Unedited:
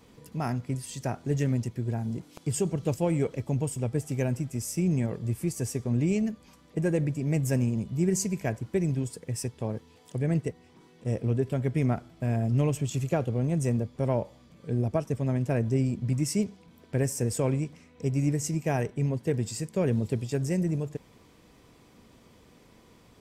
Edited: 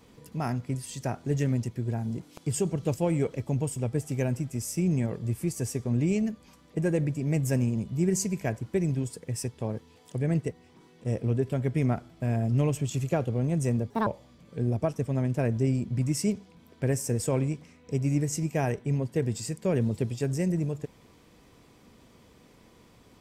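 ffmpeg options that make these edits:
ffmpeg -i in.wav -filter_complex "[0:a]asplit=3[link_01][link_02][link_03];[link_01]atrim=end=13.904[link_04];[link_02]atrim=start=13.9:end=14.18,asetpts=PTS-STARTPTS,asetrate=74088,aresample=44100[link_05];[link_03]atrim=start=14.176[link_06];[link_04][link_05]acrossfade=duration=0.004:curve1=hsin:curve2=hsin[link_07];[link_07][link_06]acrossfade=duration=0.004:curve1=hsin:curve2=hsin" out.wav

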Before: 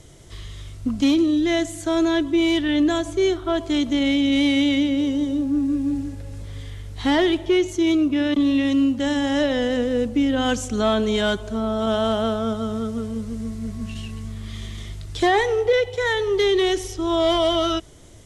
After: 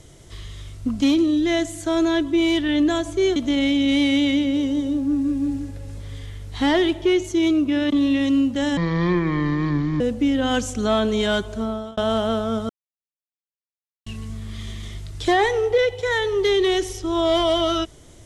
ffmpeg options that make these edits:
ffmpeg -i in.wav -filter_complex "[0:a]asplit=7[link_01][link_02][link_03][link_04][link_05][link_06][link_07];[link_01]atrim=end=3.362[link_08];[link_02]atrim=start=3.798:end=9.214[link_09];[link_03]atrim=start=9.21:end=9.95,asetpts=PTS-STARTPTS,asetrate=26460,aresample=44100[link_10];[link_04]atrim=start=9.946:end=11.92,asetpts=PTS-STARTPTS,afade=type=out:start_time=1.624:duration=0.35[link_11];[link_05]atrim=start=11.92:end=12.64,asetpts=PTS-STARTPTS,afade=type=in:duration=0.004:curve=hsin,afade=type=out:start_time=0.716:duration=0.004:curve=hsin[link_12];[link_06]atrim=start=12.64:end=14.01,asetpts=PTS-STARTPTS,volume=0[link_13];[link_07]atrim=start=14.01,asetpts=PTS-STARTPTS,afade=type=in:duration=0.004:curve=hsin[link_14];[link_08][link_09]acrossfade=duration=0.004:curve1=hsin:curve2=hsin[link_15];[link_15][link_10]acrossfade=duration=0.004:curve1=hsin:curve2=hsin[link_16];[link_11][link_12][link_13][link_14]concat=n=4:v=0:a=1[link_17];[link_16][link_17]acrossfade=duration=0.004:curve1=hsin:curve2=hsin" out.wav

